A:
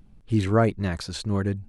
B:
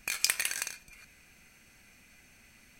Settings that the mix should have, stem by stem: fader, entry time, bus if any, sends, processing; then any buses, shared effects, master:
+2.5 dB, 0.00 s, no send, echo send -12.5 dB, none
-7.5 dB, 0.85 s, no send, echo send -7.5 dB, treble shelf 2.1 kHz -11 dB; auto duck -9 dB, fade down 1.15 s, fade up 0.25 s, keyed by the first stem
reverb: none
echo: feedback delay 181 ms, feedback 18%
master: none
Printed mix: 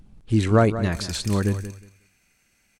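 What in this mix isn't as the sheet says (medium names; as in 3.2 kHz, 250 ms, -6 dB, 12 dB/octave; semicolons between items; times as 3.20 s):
stem B: missing treble shelf 2.1 kHz -11 dB; master: extra peaking EQ 7.2 kHz +4 dB 1.1 oct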